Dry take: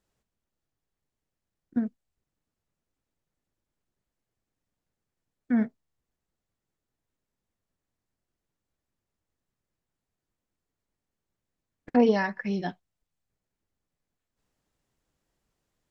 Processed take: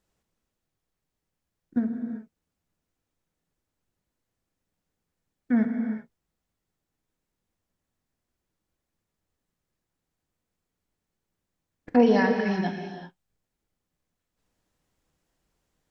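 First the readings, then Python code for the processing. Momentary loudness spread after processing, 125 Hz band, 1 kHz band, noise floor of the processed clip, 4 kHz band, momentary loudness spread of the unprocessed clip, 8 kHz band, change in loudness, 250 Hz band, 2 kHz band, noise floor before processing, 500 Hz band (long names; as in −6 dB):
17 LU, +3.5 dB, +3.0 dB, −84 dBFS, +3.0 dB, 12 LU, can't be measured, +2.5 dB, +3.5 dB, +3.0 dB, below −85 dBFS, +3.0 dB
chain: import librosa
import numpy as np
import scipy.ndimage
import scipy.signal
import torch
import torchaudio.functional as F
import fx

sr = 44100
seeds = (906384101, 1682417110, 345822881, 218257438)

y = fx.rev_gated(x, sr, seeds[0], gate_ms=410, shape='flat', drr_db=3.5)
y = F.gain(torch.from_numpy(y), 1.5).numpy()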